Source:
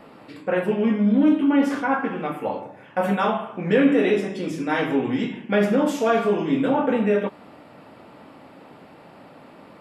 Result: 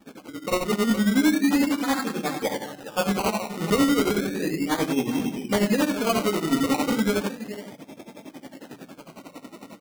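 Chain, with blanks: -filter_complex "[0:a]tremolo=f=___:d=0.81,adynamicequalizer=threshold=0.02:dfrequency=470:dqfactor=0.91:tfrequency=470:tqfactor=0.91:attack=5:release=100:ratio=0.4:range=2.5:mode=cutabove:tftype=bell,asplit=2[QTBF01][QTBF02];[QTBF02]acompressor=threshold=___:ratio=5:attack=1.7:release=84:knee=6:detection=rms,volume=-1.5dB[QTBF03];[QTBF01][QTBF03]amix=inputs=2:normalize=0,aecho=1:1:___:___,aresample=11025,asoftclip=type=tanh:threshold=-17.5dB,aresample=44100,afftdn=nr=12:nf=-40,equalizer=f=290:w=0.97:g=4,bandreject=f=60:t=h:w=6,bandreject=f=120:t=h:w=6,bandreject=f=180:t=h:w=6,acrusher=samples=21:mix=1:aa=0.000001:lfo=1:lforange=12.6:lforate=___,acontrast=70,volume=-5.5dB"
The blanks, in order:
11, -39dB, 416, 0.2, 0.34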